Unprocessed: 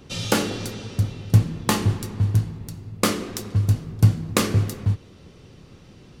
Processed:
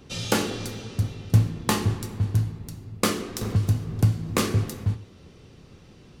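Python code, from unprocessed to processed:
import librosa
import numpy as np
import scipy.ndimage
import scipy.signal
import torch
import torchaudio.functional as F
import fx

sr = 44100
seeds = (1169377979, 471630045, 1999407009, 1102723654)

y = fx.rev_gated(x, sr, seeds[0], gate_ms=170, shape='falling', drr_db=11.0)
y = fx.band_squash(y, sr, depth_pct=70, at=(3.41, 4.38))
y = y * librosa.db_to_amplitude(-2.5)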